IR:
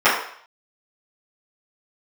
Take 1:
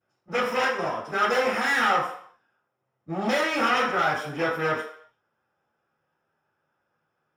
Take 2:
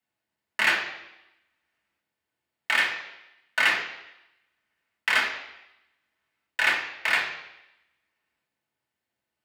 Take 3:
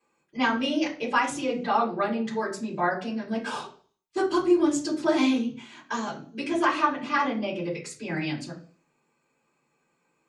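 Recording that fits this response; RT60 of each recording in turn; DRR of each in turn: 1; 0.60 s, 0.90 s, 0.45 s; -15.0 dB, -3.0 dB, -7.0 dB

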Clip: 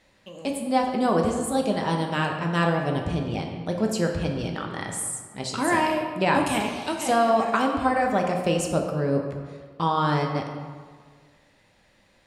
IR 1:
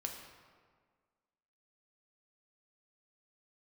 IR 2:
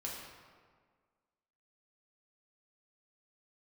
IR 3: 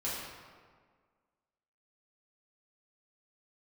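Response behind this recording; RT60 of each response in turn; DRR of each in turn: 1; 1.7 s, 1.7 s, 1.7 s; 1.5 dB, -4.0 dB, -9.0 dB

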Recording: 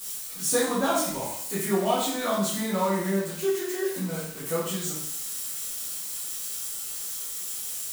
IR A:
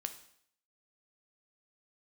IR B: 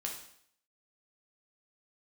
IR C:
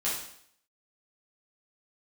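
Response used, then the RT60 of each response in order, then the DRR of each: C; 0.65 s, 0.65 s, 0.65 s; 7.5 dB, -0.5 dB, -8.5 dB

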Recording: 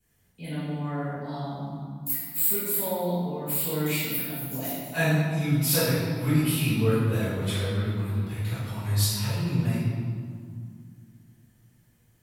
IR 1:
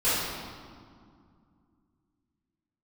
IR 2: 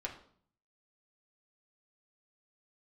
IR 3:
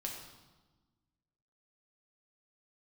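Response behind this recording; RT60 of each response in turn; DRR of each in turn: 1; 2.2 s, 0.55 s, 1.2 s; -15.5 dB, -2.0 dB, -0.5 dB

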